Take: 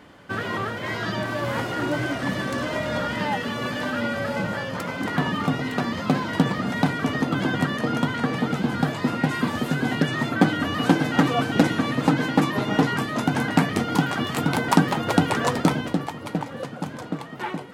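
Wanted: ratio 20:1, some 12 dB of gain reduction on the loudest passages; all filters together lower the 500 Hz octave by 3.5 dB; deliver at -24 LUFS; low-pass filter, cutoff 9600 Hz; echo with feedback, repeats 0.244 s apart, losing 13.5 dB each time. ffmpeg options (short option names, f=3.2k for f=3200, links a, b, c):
-af "lowpass=9.6k,equalizer=f=500:t=o:g=-4.5,acompressor=threshold=-26dB:ratio=20,aecho=1:1:244|488:0.211|0.0444,volume=7dB"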